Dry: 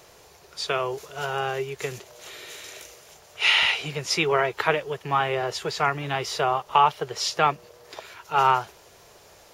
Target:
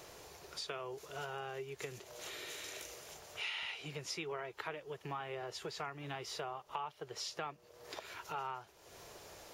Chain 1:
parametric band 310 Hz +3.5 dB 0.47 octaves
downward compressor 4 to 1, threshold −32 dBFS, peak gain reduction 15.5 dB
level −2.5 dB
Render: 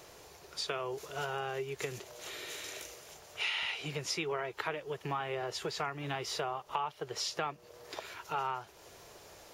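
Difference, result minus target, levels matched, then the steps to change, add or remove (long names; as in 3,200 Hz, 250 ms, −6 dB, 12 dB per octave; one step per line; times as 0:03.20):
downward compressor: peak gain reduction −6.5 dB
change: downward compressor 4 to 1, threshold −40.5 dBFS, peak gain reduction 22 dB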